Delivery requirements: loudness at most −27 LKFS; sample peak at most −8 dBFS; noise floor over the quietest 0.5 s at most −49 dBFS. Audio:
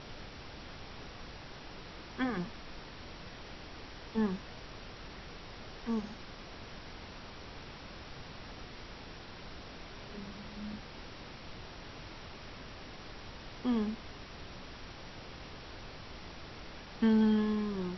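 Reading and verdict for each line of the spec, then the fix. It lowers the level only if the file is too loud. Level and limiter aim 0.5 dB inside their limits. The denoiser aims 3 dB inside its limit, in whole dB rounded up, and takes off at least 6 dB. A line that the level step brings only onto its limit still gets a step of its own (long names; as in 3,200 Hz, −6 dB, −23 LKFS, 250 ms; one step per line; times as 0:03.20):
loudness −40.0 LKFS: in spec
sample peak −19.0 dBFS: in spec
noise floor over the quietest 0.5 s −48 dBFS: out of spec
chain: broadband denoise 6 dB, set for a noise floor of −48 dBFS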